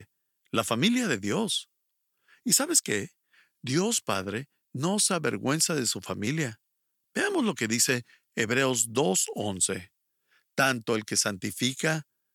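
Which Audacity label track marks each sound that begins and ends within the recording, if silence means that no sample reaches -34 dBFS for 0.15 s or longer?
0.540000	1.610000	sound
2.460000	3.050000	sound
3.640000	4.420000	sound
4.750000	6.520000	sound
7.160000	8.000000	sound
8.370000	9.810000	sound
10.580000	12.000000	sound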